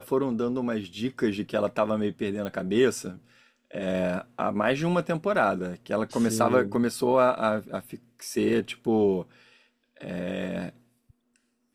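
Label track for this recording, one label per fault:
2.450000	2.450000	click −21 dBFS

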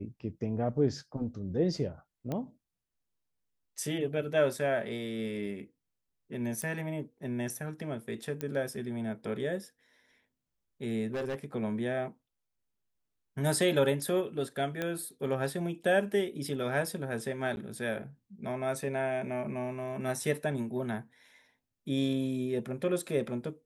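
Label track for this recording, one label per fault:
2.320000	2.320000	click −22 dBFS
6.620000	6.620000	click −23 dBFS
8.410000	8.410000	click −20 dBFS
11.070000	11.450000	clipping −30.5 dBFS
14.820000	14.820000	click −19 dBFS
17.560000	17.570000	drop-out 11 ms

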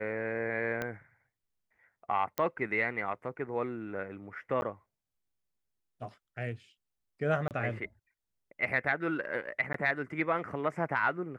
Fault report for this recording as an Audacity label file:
0.820000	0.820000	click −20 dBFS
2.380000	2.380000	click −17 dBFS
4.610000	4.620000	drop-out
7.480000	7.510000	drop-out 28 ms
9.730000	9.740000	drop-out 13 ms

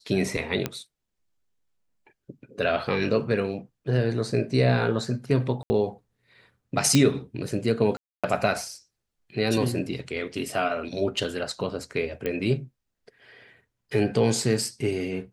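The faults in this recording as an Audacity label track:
0.660000	0.660000	click −11 dBFS
5.630000	5.700000	drop-out 70 ms
6.950000	6.950000	click −7 dBFS
7.970000	8.240000	drop-out 266 ms
12.260000	12.260000	click −16 dBFS

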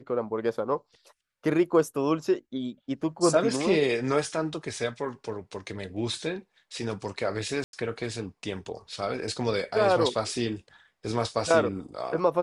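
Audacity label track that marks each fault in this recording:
7.640000	7.730000	drop-out 92 ms

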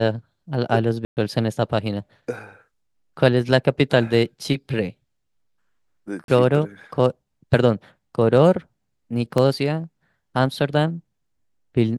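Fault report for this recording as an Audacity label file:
1.050000	1.170000	drop-out 119 ms
6.240000	6.280000	drop-out 42 ms
9.380000	9.380000	drop-out 2.8 ms

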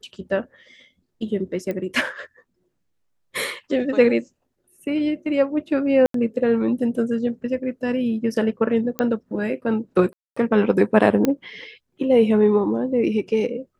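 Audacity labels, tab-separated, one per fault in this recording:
1.710000	1.710000	click −16 dBFS
6.060000	6.140000	drop-out 83 ms
8.990000	8.990000	click −10 dBFS
10.130000	10.370000	drop-out 235 ms
11.250000	11.250000	click −7 dBFS

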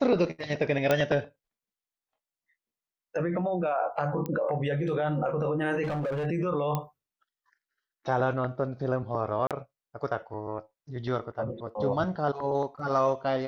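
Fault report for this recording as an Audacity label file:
0.910000	0.910000	click −10 dBFS
4.260000	4.260000	click −20 dBFS
5.830000	6.270000	clipping −27 dBFS
6.750000	6.750000	click −16 dBFS
9.470000	9.510000	drop-out 37 ms

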